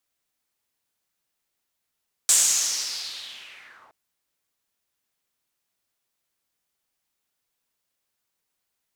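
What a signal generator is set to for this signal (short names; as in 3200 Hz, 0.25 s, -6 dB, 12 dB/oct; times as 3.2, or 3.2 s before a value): swept filtered noise pink, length 1.62 s bandpass, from 7800 Hz, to 830 Hz, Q 3.7, linear, gain ramp -39 dB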